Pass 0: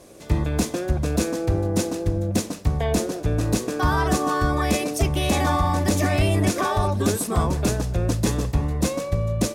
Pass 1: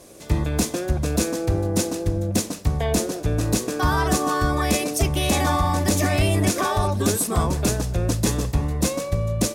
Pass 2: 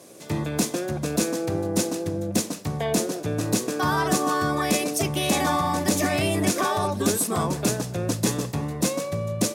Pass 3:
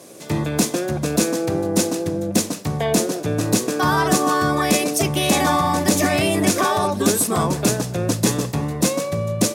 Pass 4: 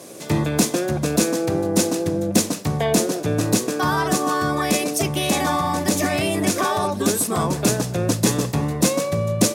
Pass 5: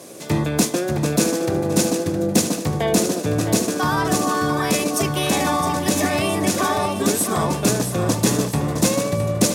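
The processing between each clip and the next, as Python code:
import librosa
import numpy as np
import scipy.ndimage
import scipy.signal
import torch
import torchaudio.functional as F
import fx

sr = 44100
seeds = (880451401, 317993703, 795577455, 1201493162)

y1 = fx.high_shelf(x, sr, hz=4300.0, db=5.5)
y2 = scipy.signal.sosfilt(scipy.signal.butter(4, 120.0, 'highpass', fs=sr, output='sos'), y1)
y2 = y2 * 10.0 ** (-1.0 / 20.0)
y3 = fx.hum_notches(y2, sr, base_hz=50, count=2)
y3 = y3 * 10.0 ** (5.0 / 20.0)
y4 = fx.rider(y3, sr, range_db=4, speed_s=0.5)
y4 = y4 * 10.0 ** (-1.0 / 20.0)
y5 = fx.echo_feedback(y4, sr, ms=664, feedback_pct=50, wet_db=-9)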